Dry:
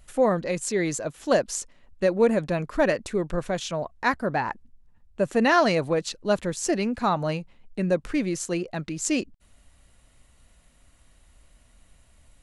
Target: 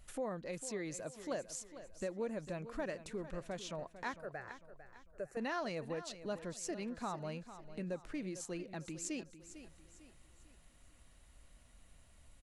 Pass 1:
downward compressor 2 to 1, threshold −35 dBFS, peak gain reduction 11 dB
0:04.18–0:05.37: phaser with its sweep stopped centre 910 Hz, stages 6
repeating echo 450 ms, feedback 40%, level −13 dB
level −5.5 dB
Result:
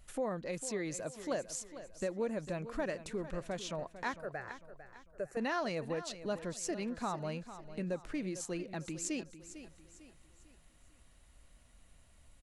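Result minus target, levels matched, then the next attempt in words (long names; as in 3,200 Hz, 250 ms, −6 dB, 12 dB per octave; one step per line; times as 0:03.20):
downward compressor: peak gain reduction −4 dB
downward compressor 2 to 1, threshold −42.5 dBFS, peak gain reduction 15 dB
0:04.18–0:05.37: phaser with its sweep stopped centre 910 Hz, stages 6
repeating echo 450 ms, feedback 40%, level −13 dB
level −5.5 dB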